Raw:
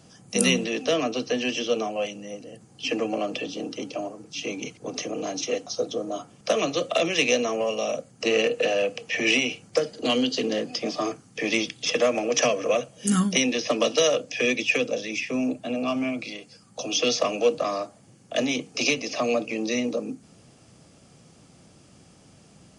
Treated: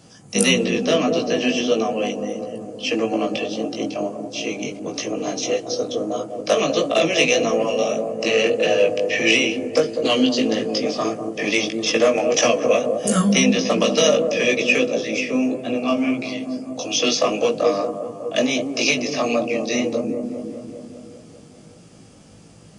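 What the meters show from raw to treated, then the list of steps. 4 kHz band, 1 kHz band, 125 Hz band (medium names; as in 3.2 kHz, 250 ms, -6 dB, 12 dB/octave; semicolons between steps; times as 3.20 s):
+4.5 dB, +5.0 dB, +6.0 dB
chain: feedback echo behind a low-pass 199 ms, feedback 68%, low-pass 680 Hz, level -5 dB; chorus 1.6 Hz, delay 17.5 ms, depth 2.4 ms; trim +7.5 dB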